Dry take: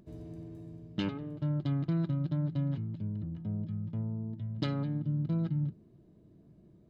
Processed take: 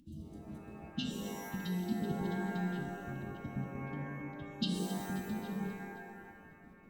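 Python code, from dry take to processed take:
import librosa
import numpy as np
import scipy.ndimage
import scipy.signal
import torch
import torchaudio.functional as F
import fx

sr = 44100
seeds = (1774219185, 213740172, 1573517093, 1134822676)

y = fx.peak_eq(x, sr, hz=86.0, db=-13.5, octaves=0.41)
y = fx.pitch_keep_formants(y, sr, semitones=4.5)
y = fx.step_gate(y, sr, bpm=156, pattern='xxxx.x.xxxxxxx..', floor_db=-60.0, edge_ms=4.5)
y = fx.hpss(y, sr, part='harmonic', gain_db=-14)
y = fx.brickwall_bandstop(y, sr, low_hz=350.0, high_hz=2700.0)
y = fx.echo_feedback(y, sr, ms=266, feedback_pct=58, wet_db=-17.5)
y = fx.rev_shimmer(y, sr, seeds[0], rt60_s=1.4, semitones=12, shimmer_db=-2, drr_db=3.0)
y = y * librosa.db_to_amplitude(6.5)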